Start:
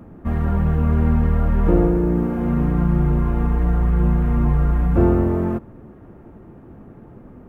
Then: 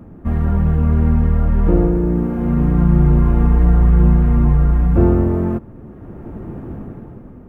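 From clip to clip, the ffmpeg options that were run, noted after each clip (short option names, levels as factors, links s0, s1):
-af "lowshelf=f=340:g=5,dynaudnorm=f=160:g=11:m=5.62,volume=0.891"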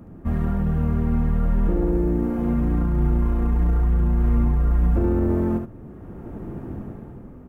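-filter_complex "[0:a]bass=f=250:g=0,treble=f=4000:g=5,alimiter=limit=0.335:level=0:latency=1:release=33,asplit=2[s0][s1];[s1]aecho=0:1:72:0.501[s2];[s0][s2]amix=inputs=2:normalize=0,volume=0.596"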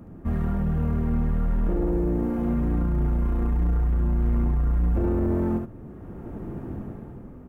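-af "asoftclip=type=tanh:threshold=0.168,volume=0.891"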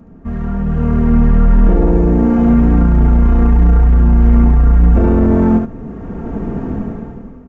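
-af "aecho=1:1:4.4:0.44,dynaudnorm=f=320:g=5:m=3.55,aresample=16000,aresample=44100,volume=1.33"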